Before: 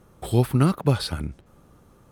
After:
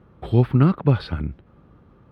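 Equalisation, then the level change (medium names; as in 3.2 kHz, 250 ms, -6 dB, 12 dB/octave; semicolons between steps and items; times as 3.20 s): high-pass 41 Hz; distance through air 370 m; peaking EQ 670 Hz -3.5 dB 1.4 oct; +4.0 dB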